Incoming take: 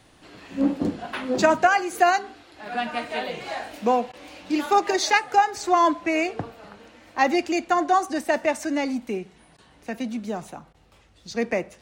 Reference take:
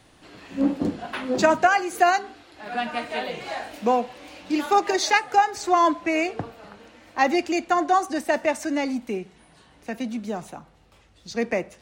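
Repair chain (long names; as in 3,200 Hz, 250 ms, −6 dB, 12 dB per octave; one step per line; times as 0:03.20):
repair the gap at 0:04.12/0:09.57/0:10.73, 12 ms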